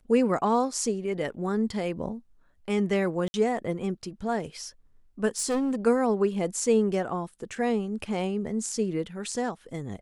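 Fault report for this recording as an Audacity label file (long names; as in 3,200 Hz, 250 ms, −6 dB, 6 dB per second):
3.280000	3.340000	drop-out 60 ms
5.380000	5.760000	clipping −23 dBFS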